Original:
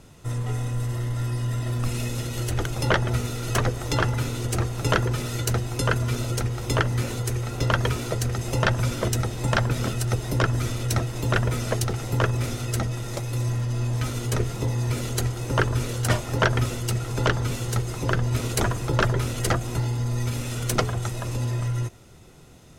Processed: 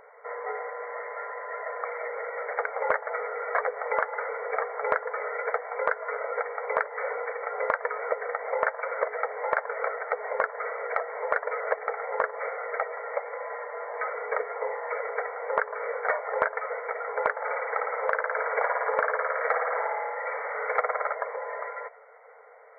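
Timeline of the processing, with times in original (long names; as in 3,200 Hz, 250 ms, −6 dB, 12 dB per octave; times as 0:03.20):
0:17.31–0:21.15: flutter between parallel walls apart 9.4 metres, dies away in 1.2 s
whole clip: brick-wall band-pass 420–2,300 Hz; downward compressor 6 to 1, threshold −29 dBFS; level +6.5 dB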